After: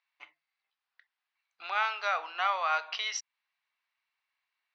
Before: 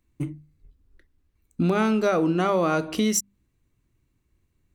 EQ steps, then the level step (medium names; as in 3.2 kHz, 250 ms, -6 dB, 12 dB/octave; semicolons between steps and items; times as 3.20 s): elliptic band-pass 770–5400 Hz, stop band 50 dB; distance through air 290 m; tilt EQ +4.5 dB/octave; 0.0 dB